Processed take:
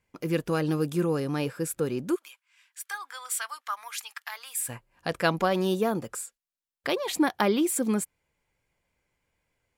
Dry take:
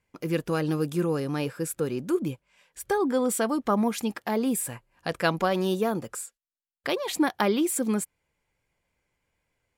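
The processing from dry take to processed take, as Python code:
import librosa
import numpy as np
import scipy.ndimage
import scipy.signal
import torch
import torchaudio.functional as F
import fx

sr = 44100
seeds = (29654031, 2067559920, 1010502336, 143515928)

y = fx.highpass(x, sr, hz=1200.0, slope=24, at=(2.14, 4.68), fade=0.02)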